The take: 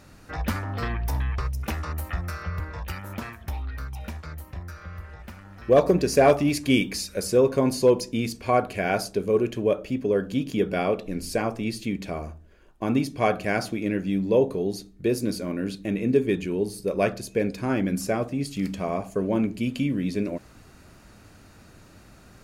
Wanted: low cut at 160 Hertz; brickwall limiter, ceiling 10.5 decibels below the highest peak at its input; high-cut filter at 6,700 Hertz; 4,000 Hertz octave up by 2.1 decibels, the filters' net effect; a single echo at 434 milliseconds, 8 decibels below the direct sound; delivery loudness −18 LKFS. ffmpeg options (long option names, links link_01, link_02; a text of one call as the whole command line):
ffmpeg -i in.wav -af "highpass=160,lowpass=6700,equalizer=frequency=4000:width_type=o:gain=3.5,alimiter=limit=-16.5dB:level=0:latency=1,aecho=1:1:434:0.398,volume=10.5dB" out.wav